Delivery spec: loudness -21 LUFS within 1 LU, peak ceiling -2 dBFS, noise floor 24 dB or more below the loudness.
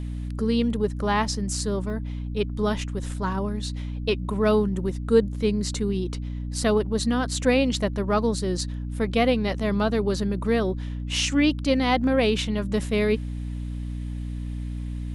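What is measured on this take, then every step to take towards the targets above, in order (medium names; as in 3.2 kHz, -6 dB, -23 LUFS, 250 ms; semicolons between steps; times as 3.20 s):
dropouts 1; longest dropout 1.5 ms; hum 60 Hz; highest harmonic 300 Hz; hum level -28 dBFS; loudness -25.0 LUFS; peak level -7.0 dBFS; loudness target -21.0 LUFS
-> interpolate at 1.90 s, 1.5 ms; hum notches 60/120/180/240/300 Hz; trim +4 dB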